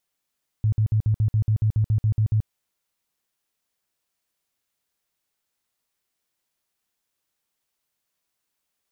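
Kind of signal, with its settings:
tone bursts 108 Hz, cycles 9, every 0.14 s, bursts 13, −16.5 dBFS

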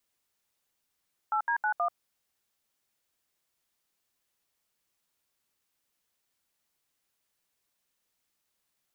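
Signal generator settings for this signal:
touch tones "8D91", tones 87 ms, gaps 72 ms, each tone −27.5 dBFS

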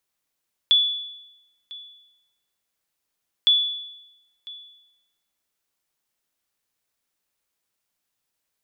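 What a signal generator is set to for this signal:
ping with an echo 3,440 Hz, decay 0.93 s, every 2.76 s, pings 2, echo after 1.00 s, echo −21.5 dB −11 dBFS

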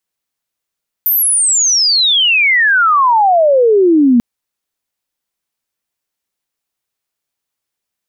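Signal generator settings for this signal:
glide logarithmic 14,000 Hz → 230 Hz −9.5 dBFS → −5.5 dBFS 3.14 s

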